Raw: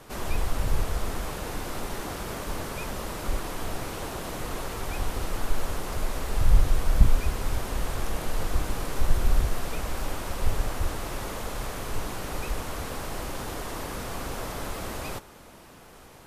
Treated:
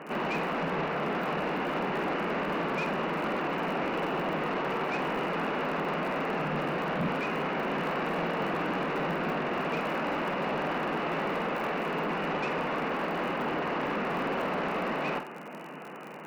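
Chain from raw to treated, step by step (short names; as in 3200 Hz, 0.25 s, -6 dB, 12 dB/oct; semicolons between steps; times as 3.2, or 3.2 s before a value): FFT band-pass 140–3000 Hz; soft clip -33.5 dBFS, distortion -14 dB; crackle 51/s -45 dBFS; flutter echo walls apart 8.2 m, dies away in 0.32 s; gain +8 dB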